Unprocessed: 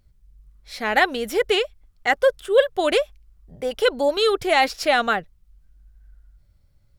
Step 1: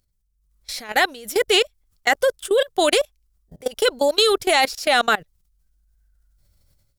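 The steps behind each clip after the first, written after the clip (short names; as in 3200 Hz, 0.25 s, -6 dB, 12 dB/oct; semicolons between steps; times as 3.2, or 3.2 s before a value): level quantiser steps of 22 dB; tone controls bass -3 dB, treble +11 dB; AGC gain up to 12.5 dB; gain -3 dB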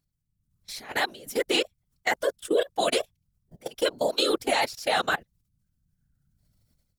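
whisperiser; gain -7.5 dB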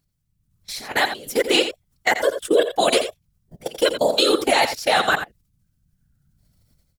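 echo 86 ms -10 dB; gain +6.5 dB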